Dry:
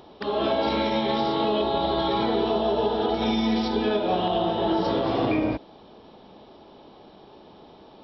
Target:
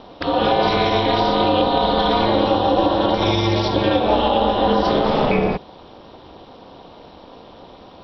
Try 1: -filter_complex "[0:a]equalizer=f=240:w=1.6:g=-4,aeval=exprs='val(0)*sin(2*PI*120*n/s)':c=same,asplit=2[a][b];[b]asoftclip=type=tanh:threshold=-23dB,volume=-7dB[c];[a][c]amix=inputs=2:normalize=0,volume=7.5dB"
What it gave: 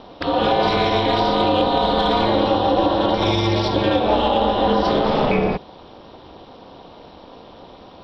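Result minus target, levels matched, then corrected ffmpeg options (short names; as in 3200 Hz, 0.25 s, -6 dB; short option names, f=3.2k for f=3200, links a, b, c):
soft clip: distortion +12 dB
-filter_complex "[0:a]equalizer=f=240:w=1.6:g=-4,aeval=exprs='val(0)*sin(2*PI*120*n/s)':c=same,asplit=2[a][b];[b]asoftclip=type=tanh:threshold=-14.5dB,volume=-7dB[c];[a][c]amix=inputs=2:normalize=0,volume=7.5dB"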